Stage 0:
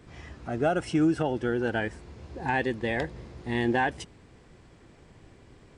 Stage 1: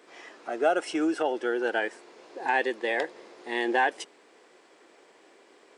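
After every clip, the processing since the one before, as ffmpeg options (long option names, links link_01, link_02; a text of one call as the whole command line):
ffmpeg -i in.wav -af "highpass=frequency=360:width=0.5412,highpass=frequency=360:width=1.3066,volume=2.5dB" out.wav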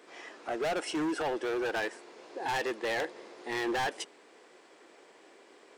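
ffmpeg -i in.wav -af "asoftclip=type=hard:threshold=-28.5dB" out.wav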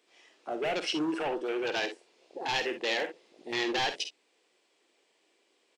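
ffmpeg -i in.wav -af "highshelf=frequency=2100:width_type=q:width=1.5:gain=7,afwtdn=0.0158,aecho=1:1:50|62:0.299|0.224" out.wav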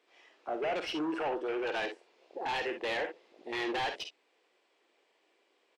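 ffmpeg -i in.wav -filter_complex "[0:a]asplit=2[link_01][link_02];[link_02]highpass=frequency=720:poles=1,volume=13dB,asoftclip=type=tanh:threshold=-18dB[link_03];[link_01][link_03]amix=inputs=2:normalize=0,lowpass=frequency=1400:poles=1,volume=-6dB,volume=-3.5dB" out.wav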